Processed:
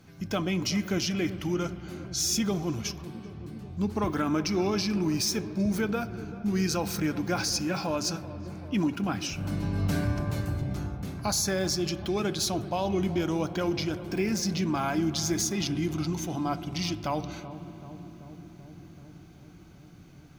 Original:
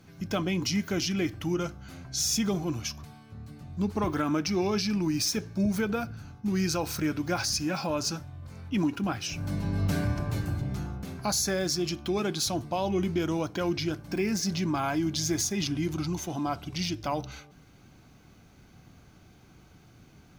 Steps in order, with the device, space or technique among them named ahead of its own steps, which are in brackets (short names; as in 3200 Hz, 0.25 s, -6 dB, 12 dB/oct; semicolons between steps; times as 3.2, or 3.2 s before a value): dub delay into a spring reverb (darkening echo 0.384 s, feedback 83%, low-pass 850 Hz, level -14 dB; spring tank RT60 3.6 s, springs 58 ms, chirp 75 ms, DRR 14.5 dB)